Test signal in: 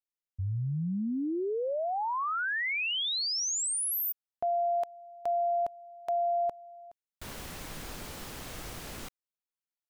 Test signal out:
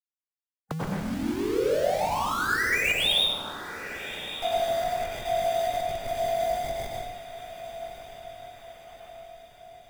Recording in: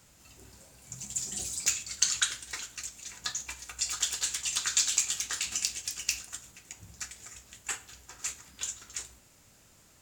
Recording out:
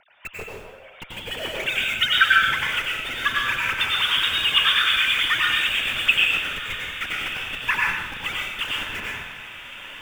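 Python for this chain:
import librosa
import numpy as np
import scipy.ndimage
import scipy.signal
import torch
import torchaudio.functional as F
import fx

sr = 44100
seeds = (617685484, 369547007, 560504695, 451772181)

p1 = fx.sine_speech(x, sr)
p2 = fx.rotary(p1, sr, hz=6.7)
p3 = fx.schmitt(p2, sr, flips_db=-44.0)
p4 = p2 + (p3 * 10.0 ** (-8.0 / 20.0))
p5 = fx.hpss(p4, sr, part='percussive', gain_db=9)
p6 = p5 + fx.echo_diffused(p5, sr, ms=1239, feedback_pct=51, wet_db=-12, dry=0)
y = fx.rev_plate(p6, sr, seeds[0], rt60_s=0.95, hf_ratio=0.95, predelay_ms=80, drr_db=-3.0)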